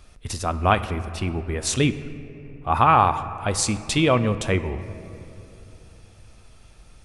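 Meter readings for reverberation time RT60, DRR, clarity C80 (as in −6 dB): 2.9 s, 11.0 dB, 13.5 dB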